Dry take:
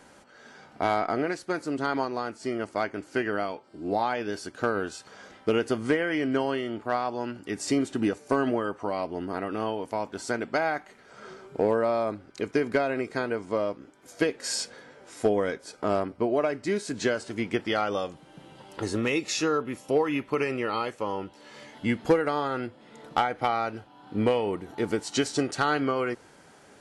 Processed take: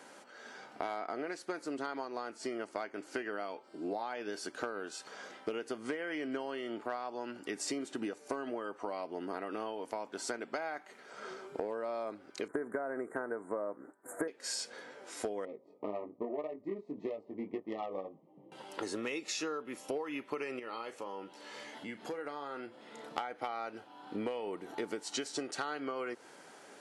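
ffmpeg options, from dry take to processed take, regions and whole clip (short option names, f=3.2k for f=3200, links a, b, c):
-filter_complex "[0:a]asettb=1/sr,asplit=3[a][b][c];[a]atrim=end=12.484[d];[b]atrim=start=12.48:end=14.28,asetpts=PTS-STARTPTS,afade=t=in:d=0.004:c=qsin,afade=t=out:st=1.796:d=0.004:c=qsin,agate=range=-33dB:threshold=-50dB:ratio=3:release=100:detection=peak,acontrast=59,asuperstop=centerf=3900:order=12:qfactor=0.66[e];[c]atrim=start=14.276[f];[d][e]acrossfade=d=0.004:c1=hsin:c2=qsin[g];[g][f]acrossfade=d=0.004:c1=qsin:c2=hsin,asettb=1/sr,asplit=3[h][i][j];[h]atrim=end=15.454[k];[i]atrim=start=15.45:end=18.52,asetpts=PTS-STARTPTS,afade=t=in:d=0.004:c=qsin,afade=t=out:st=3.066:d=0.004:c=qsin,flanger=delay=18.5:depth=2.7:speed=1.8,adynamicsmooth=sensitivity=0.5:basefreq=550,asuperstop=centerf=1500:order=20:qfactor=2.9[l];[j]atrim=start=18.516[m];[k][l]acrossfade=d=0.004:c1=hsin:c2=qsin[n];[n][m]acrossfade=d=0.004:c1=qsin:c2=hsin,asettb=1/sr,asplit=3[o][p][q];[o]atrim=end=20.594[r];[p]atrim=start=20.59:end=23.18,asetpts=PTS-STARTPTS,afade=t=in:d=0.004:c=qsin,afade=t=out:st=2.586:d=0.004:c=qsin,acompressor=threshold=-42dB:ratio=2.5:attack=3.2:release=140:knee=1:detection=peak,asplit=2[s][t];[t]adelay=35,volume=-11.5dB[u];[s][u]amix=inputs=2:normalize=0,atrim=end_sample=114219[v];[q]atrim=start=23.176[w];[r][v]acrossfade=d=0.004:c1=hsin:c2=qsin[x];[x][w]acrossfade=d=0.004:c1=qsin:c2=hsin,highpass=280,acompressor=threshold=-35dB:ratio=6"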